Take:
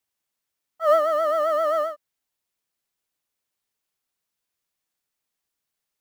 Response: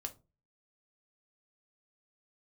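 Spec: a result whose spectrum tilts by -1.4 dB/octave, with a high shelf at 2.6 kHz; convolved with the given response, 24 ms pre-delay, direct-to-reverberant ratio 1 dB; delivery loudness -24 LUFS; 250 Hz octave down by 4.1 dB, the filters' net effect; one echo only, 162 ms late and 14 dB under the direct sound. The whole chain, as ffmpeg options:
-filter_complex "[0:a]equalizer=f=250:t=o:g=-5.5,highshelf=f=2600:g=-9,aecho=1:1:162:0.2,asplit=2[s0][s1];[1:a]atrim=start_sample=2205,adelay=24[s2];[s1][s2]afir=irnorm=-1:irlink=0,volume=1.12[s3];[s0][s3]amix=inputs=2:normalize=0,volume=0.668"

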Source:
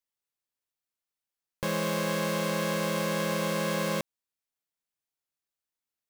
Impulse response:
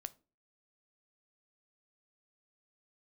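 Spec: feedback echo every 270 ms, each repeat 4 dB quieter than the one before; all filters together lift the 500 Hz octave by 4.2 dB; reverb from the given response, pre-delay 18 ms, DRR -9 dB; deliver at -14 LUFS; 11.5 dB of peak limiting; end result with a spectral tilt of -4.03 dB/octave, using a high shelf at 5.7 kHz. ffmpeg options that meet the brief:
-filter_complex "[0:a]equalizer=f=500:t=o:g=4.5,highshelf=f=5700:g=5.5,alimiter=level_in=1.19:limit=0.0631:level=0:latency=1,volume=0.841,aecho=1:1:270|540|810|1080|1350|1620|1890|2160|2430:0.631|0.398|0.25|0.158|0.0994|0.0626|0.0394|0.0249|0.0157,asplit=2[s0][s1];[1:a]atrim=start_sample=2205,adelay=18[s2];[s1][s2]afir=irnorm=-1:irlink=0,volume=4.47[s3];[s0][s3]amix=inputs=2:normalize=0,volume=2.99"

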